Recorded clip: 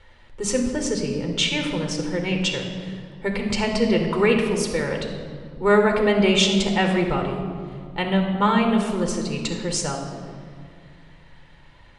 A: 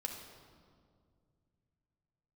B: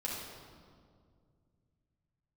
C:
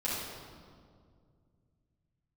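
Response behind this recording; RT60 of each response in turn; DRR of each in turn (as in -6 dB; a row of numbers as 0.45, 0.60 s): A; 2.1, 2.1, 2.1 s; 2.5, -5.0, -9.5 dB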